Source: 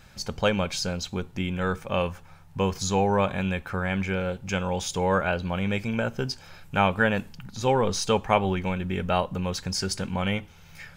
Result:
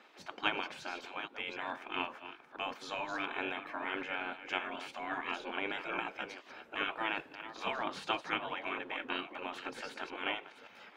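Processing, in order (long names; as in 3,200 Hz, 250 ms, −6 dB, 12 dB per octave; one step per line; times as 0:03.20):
delay that plays each chunk backwards 427 ms, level −12 dB
gate on every frequency bin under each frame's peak −15 dB weak
three-way crossover with the lows and the highs turned down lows −19 dB, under 170 Hz, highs −22 dB, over 3,400 Hz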